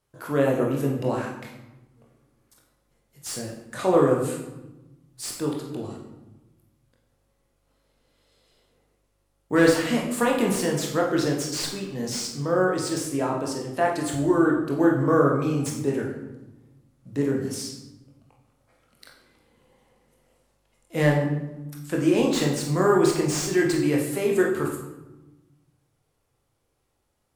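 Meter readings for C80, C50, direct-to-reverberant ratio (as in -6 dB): 7.0 dB, 4.0 dB, -1.0 dB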